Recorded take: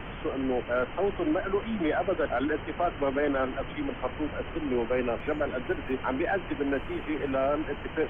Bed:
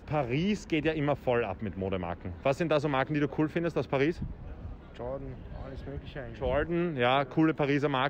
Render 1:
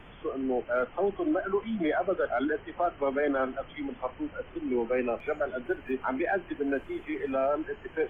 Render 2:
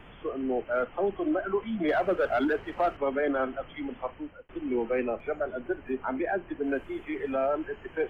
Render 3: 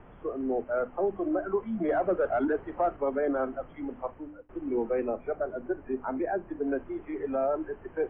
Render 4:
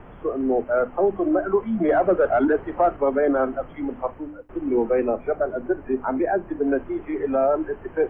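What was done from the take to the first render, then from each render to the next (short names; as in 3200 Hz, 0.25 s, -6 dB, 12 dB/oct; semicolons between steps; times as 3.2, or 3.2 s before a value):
noise print and reduce 11 dB
1.88–2.97 sample leveller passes 1; 3.91–4.49 fade out equal-power; 5.04–6.64 high shelf 2400 Hz -9 dB
LPF 1200 Hz 12 dB/oct; notches 50/100/150/200/250/300 Hz
gain +8 dB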